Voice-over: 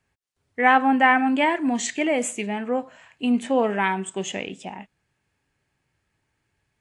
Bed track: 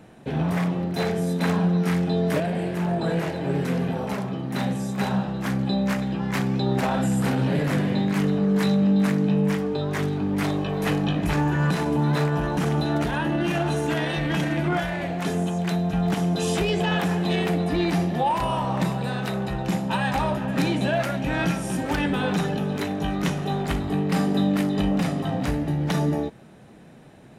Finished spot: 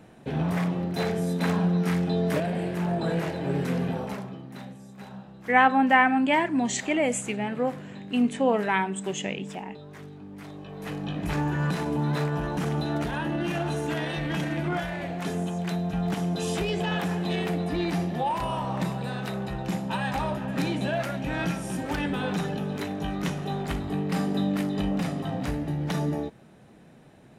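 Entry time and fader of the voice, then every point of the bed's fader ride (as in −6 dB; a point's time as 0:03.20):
4.90 s, −2.0 dB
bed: 0:03.95 −2.5 dB
0:04.78 −18 dB
0:10.44 −18 dB
0:11.35 −4.5 dB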